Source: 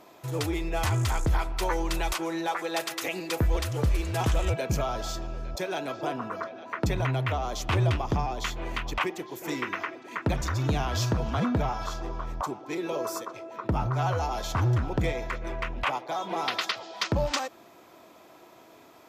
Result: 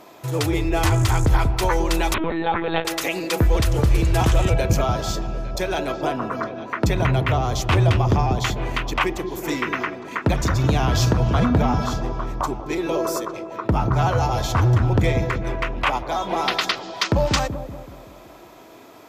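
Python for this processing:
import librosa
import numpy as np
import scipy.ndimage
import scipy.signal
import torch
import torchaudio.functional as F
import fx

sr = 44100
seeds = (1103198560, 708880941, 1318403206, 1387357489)

y = fx.echo_wet_lowpass(x, sr, ms=189, feedback_pct=49, hz=460.0, wet_db=-4.0)
y = fx.lpc_vocoder(y, sr, seeds[0], excitation='pitch_kept', order=16, at=(2.14, 2.85))
y = y * 10.0 ** (7.0 / 20.0)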